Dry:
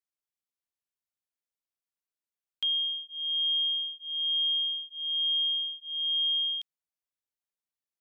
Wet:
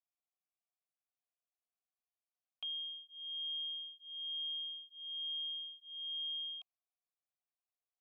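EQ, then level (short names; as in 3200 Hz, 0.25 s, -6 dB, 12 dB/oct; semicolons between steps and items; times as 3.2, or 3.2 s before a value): vowel filter a; +5.0 dB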